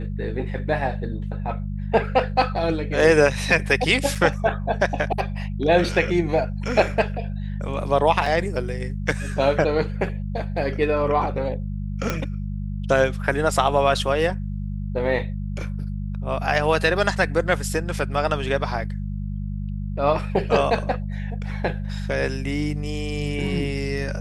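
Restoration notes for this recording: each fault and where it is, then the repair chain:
hum 50 Hz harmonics 4 -28 dBFS
4.15–4.16 s: dropout 5.8 ms
8.26 s: dropout 3.2 ms
12.10 s: pop -9 dBFS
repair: de-click; de-hum 50 Hz, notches 4; interpolate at 4.15 s, 5.8 ms; interpolate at 8.26 s, 3.2 ms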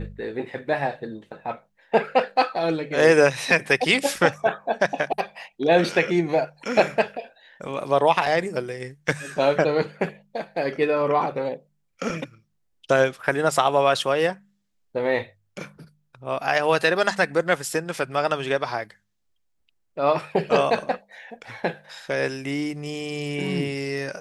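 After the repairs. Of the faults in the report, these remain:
nothing left

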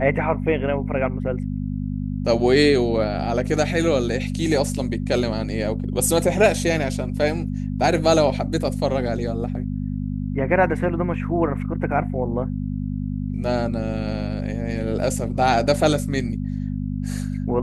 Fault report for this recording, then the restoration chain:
hum 50 Hz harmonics 5 -26 dBFS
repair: de-hum 50 Hz, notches 5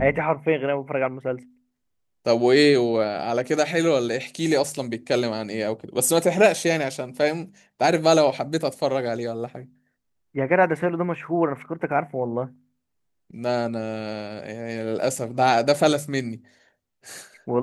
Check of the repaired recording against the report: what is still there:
nothing left

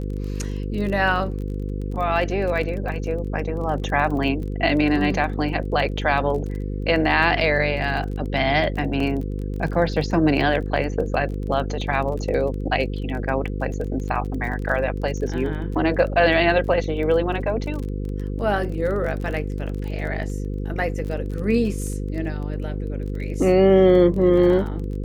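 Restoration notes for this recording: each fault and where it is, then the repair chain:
buzz 50 Hz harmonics 10 -27 dBFS
crackle 24 per s -30 dBFS
9.00 s: dropout 3.6 ms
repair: de-click; de-hum 50 Hz, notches 10; interpolate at 9.00 s, 3.6 ms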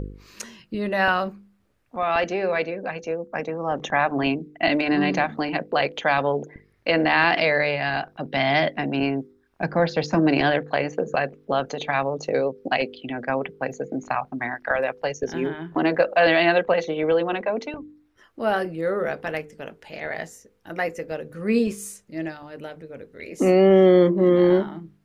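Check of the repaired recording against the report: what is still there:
nothing left

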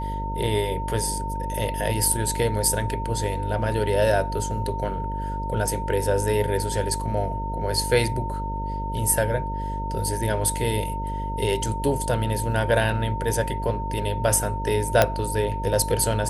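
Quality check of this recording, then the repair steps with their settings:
buzz 50 Hz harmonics 12 -30 dBFS
whine 910 Hz -30 dBFS
15.02 s: pop -2 dBFS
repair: de-click; band-stop 910 Hz, Q 30; de-hum 50 Hz, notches 12

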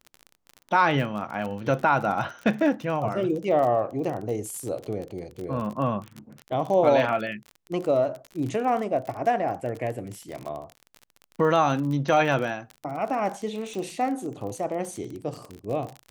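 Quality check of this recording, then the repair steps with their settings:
crackle 34 per s -31 dBFS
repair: de-click

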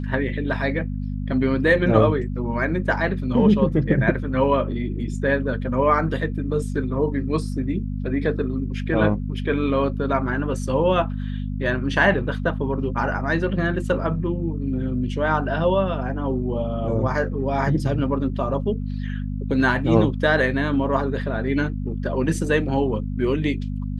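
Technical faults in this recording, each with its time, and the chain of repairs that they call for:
hum 50 Hz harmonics 5 -27 dBFS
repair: de-hum 50 Hz, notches 5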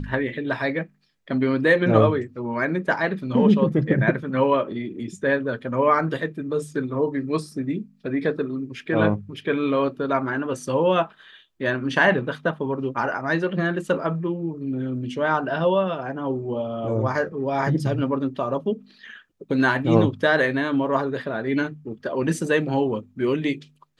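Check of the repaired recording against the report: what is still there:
nothing left

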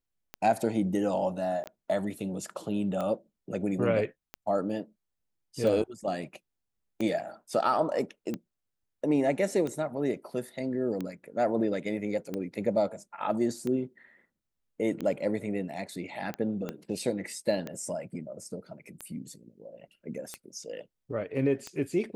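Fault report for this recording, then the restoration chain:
tick 45 rpm -21 dBFS
1.64–1.66 s: dropout 18 ms
16.69 s: pop -21 dBFS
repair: de-click; interpolate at 1.64 s, 18 ms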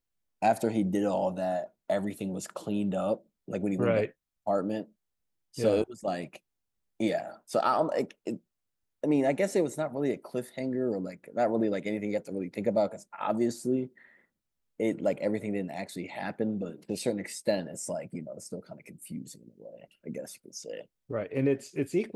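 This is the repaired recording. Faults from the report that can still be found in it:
16.69 s: pop

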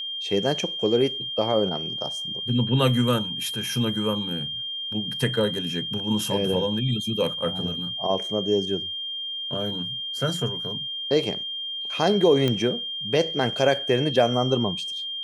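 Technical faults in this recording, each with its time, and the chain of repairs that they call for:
whine 3.2 kHz -29 dBFS
12.48 s: pop -11 dBFS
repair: de-click; band-stop 3.2 kHz, Q 30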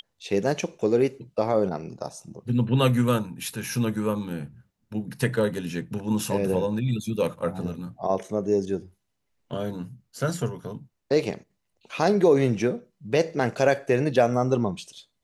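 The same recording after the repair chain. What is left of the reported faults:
nothing left

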